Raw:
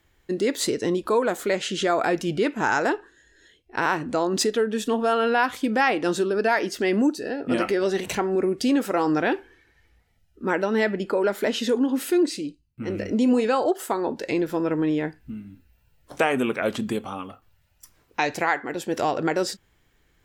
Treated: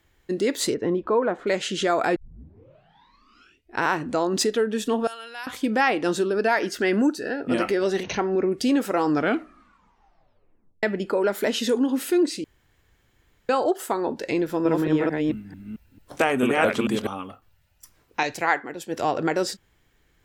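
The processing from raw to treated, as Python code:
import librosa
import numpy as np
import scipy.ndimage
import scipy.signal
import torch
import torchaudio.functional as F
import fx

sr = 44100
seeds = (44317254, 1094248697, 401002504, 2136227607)

y = fx.lowpass(x, sr, hz=1700.0, slope=12, at=(0.73, 1.46), fade=0.02)
y = fx.pre_emphasis(y, sr, coefficient=0.97, at=(5.07, 5.47))
y = fx.peak_eq(y, sr, hz=1500.0, db=9.0, octaves=0.4, at=(6.62, 7.42))
y = fx.brickwall_lowpass(y, sr, high_hz=6600.0, at=(8.03, 8.52))
y = fx.high_shelf(y, sr, hz=fx.line((11.33, 8300.0), (11.94, 4800.0)), db=6.5, at=(11.33, 11.94), fade=0.02)
y = fx.reverse_delay(y, sr, ms=222, wet_db=0, at=(14.43, 17.07))
y = fx.band_widen(y, sr, depth_pct=100, at=(18.23, 19.15))
y = fx.edit(y, sr, fx.tape_start(start_s=2.16, length_s=1.63),
    fx.tape_stop(start_s=9.09, length_s=1.74),
    fx.room_tone_fill(start_s=12.44, length_s=1.05), tone=tone)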